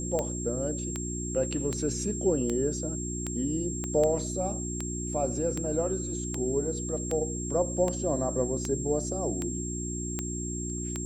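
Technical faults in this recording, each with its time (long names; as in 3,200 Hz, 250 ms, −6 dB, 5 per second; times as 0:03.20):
mains hum 60 Hz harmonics 6 −35 dBFS
scratch tick 78 rpm −17 dBFS
whistle 7,500 Hz −36 dBFS
0:03.84: click −21 dBFS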